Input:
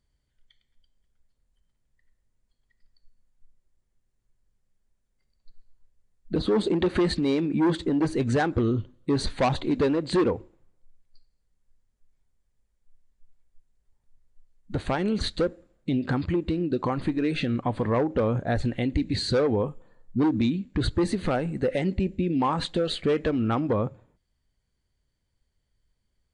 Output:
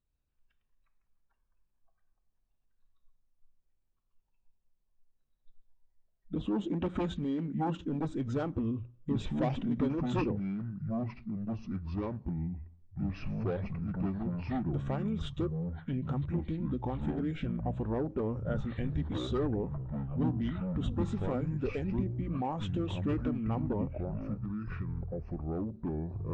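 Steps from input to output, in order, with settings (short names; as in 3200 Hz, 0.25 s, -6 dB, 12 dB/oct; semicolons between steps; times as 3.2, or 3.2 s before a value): notches 60/120/180 Hz; echoes that change speed 0.148 s, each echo -6 st, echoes 3; high shelf 2000 Hz -9 dB; notch 2100 Hz, Q 11; formant shift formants -3 st; gain -8 dB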